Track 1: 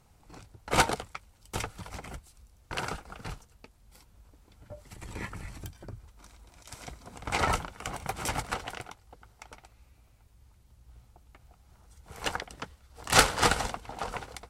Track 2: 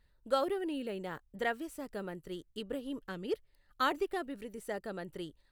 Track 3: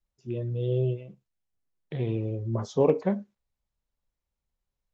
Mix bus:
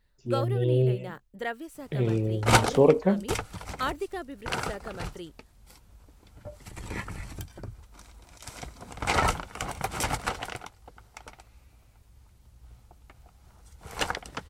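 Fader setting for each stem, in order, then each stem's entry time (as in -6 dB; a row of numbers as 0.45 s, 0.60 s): +3.0 dB, +0.5 dB, +3.0 dB; 1.75 s, 0.00 s, 0.00 s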